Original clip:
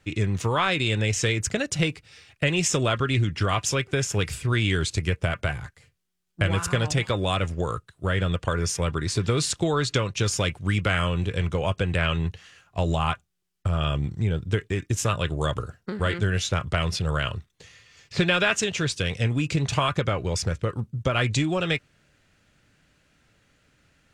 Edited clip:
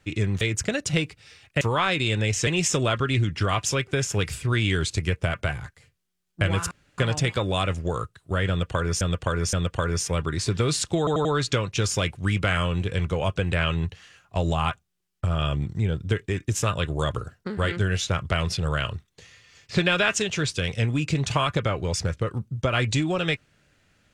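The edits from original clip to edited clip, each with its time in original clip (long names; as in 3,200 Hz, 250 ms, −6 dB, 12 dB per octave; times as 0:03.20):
0:00.41–0:01.27: move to 0:02.47
0:06.71: splice in room tone 0.27 s
0:08.22–0:08.74: repeat, 3 plays
0:09.67: stutter 0.09 s, 4 plays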